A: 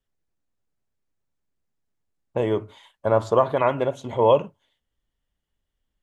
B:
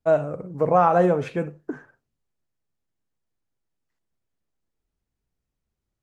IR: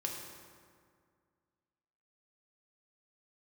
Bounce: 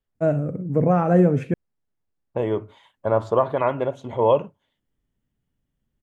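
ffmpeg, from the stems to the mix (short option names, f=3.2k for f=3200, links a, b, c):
-filter_complex "[0:a]highshelf=f=3.5k:g=-10,volume=-0.5dB[a];[1:a]equalizer=f=125:t=o:w=1:g=9,equalizer=f=250:t=o:w=1:g=9,equalizer=f=1k:t=o:w=1:g=-9,equalizer=f=2k:t=o:w=1:g=3,equalizer=f=4k:t=o:w=1:g=-10,adelay=150,volume=-1dB,asplit=3[b][c][d];[b]atrim=end=1.54,asetpts=PTS-STARTPTS,afade=t=out:st=1.536:d=0.004:c=hsin[e];[c]atrim=start=1.54:end=2.59,asetpts=PTS-STARTPTS,volume=0[f];[d]atrim=start=2.59,asetpts=PTS-STARTPTS,afade=t=in:d=0.004:c=hsin[g];[e][f][g]concat=n=3:v=0:a=1[h];[a][h]amix=inputs=2:normalize=0"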